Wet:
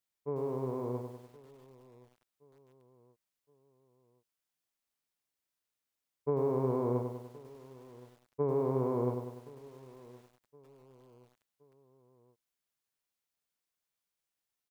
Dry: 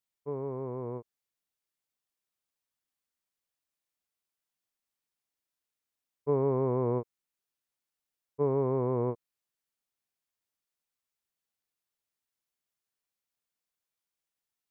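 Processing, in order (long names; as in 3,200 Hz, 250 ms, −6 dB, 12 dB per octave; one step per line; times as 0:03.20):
downward compressor 2.5 to 1, threshold −29 dBFS, peak gain reduction 5 dB
repeating echo 1,070 ms, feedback 48%, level −21 dB
feedback echo at a low word length 99 ms, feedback 55%, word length 10 bits, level −6 dB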